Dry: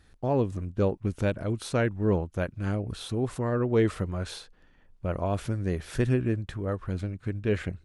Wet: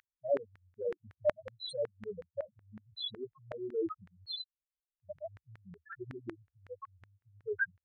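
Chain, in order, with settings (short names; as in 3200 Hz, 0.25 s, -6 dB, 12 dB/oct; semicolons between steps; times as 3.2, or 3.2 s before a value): loudest bins only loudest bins 2; LFO high-pass saw down 5.4 Hz 710–1800 Hz; dynamic EQ 540 Hz, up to -6 dB, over -52 dBFS, Q 0.96; gain +13 dB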